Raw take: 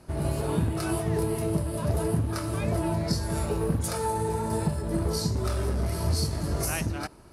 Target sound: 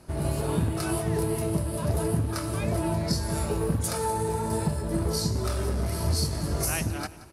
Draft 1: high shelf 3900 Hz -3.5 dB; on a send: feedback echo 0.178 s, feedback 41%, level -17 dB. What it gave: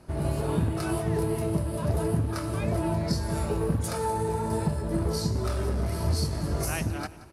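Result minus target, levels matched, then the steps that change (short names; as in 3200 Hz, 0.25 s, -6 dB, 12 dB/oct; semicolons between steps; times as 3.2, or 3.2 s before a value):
8000 Hz band -5.0 dB
change: high shelf 3900 Hz +3 dB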